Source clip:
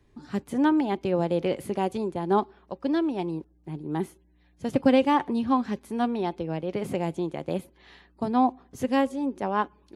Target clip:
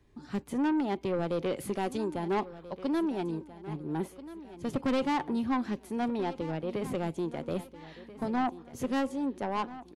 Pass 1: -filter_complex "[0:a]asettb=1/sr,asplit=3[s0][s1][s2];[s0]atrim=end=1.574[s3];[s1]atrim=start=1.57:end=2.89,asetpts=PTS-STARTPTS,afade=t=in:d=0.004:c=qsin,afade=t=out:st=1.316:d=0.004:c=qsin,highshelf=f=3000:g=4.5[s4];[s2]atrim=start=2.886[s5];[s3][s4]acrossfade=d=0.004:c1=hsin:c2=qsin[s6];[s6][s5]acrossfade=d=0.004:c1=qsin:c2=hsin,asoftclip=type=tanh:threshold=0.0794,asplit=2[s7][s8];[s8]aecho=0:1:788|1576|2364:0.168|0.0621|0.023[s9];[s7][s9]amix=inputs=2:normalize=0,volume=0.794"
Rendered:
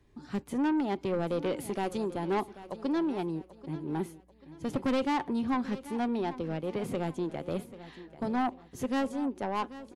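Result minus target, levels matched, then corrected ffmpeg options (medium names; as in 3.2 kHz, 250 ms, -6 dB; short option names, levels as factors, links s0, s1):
echo 547 ms early
-filter_complex "[0:a]asettb=1/sr,asplit=3[s0][s1][s2];[s0]atrim=end=1.574[s3];[s1]atrim=start=1.57:end=2.89,asetpts=PTS-STARTPTS,afade=t=in:d=0.004:c=qsin,afade=t=out:st=1.316:d=0.004:c=qsin,highshelf=f=3000:g=4.5[s4];[s2]atrim=start=2.886[s5];[s3][s4]acrossfade=d=0.004:c1=hsin:c2=qsin[s6];[s6][s5]acrossfade=d=0.004:c1=qsin:c2=hsin,asoftclip=type=tanh:threshold=0.0794,asplit=2[s7][s8];[s8]aecho=0:1:1335|2670|4005:0.168|0.0621|0.023[s9];[s7][s9]amix=inputs=2:normalize=0,volume=0.794"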